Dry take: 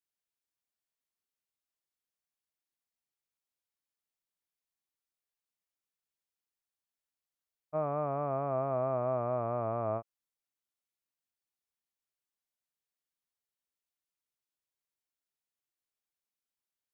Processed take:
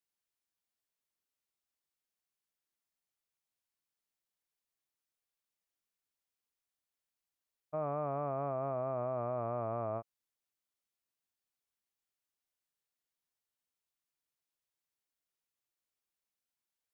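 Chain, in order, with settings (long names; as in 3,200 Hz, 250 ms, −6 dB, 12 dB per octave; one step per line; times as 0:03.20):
brickwall limiter −26.5 dBFS, peak gain reduction 5 dB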